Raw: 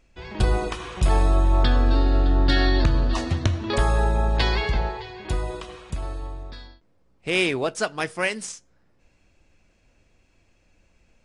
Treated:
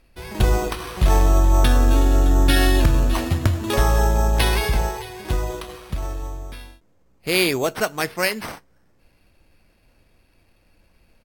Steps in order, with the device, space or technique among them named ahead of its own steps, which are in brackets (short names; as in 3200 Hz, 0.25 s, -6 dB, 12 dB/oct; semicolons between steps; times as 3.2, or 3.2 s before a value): crushed at another speed (playback speed 1.25×; sample-and-hold 5×; playback speed 0.8×); gain +3 dB